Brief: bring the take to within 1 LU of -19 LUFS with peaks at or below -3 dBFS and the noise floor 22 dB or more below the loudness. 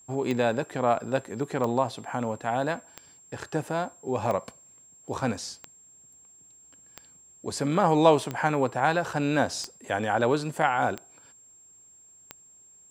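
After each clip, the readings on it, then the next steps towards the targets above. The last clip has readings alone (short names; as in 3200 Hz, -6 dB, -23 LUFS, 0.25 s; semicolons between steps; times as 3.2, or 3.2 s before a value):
clicks 10; steady tone 7500 Hz; tone level -52 dBFS; loudness -27.0 LUFS; peak -6.0 dBFS; loudness target -19.0 LUFS
-> de-click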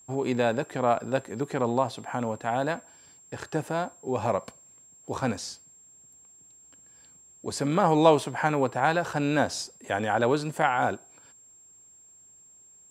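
clicks 0; steady tone 7500 Hz; tone level -52 dBFS
-> notch 7500 Hz, Q 30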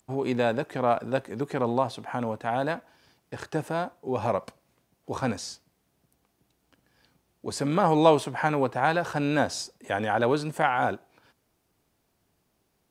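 steady tone none; loudness -27.0 LUFS; peak -6.0 dBFS; loudness target -19.0 LUFS
-> gain +8 dB; limiter -3 dBFS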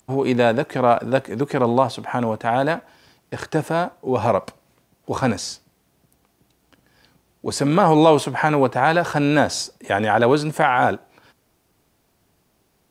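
loudness -19.5 LUFS; peak -3.0 dBFS; noise floor -65 dBFS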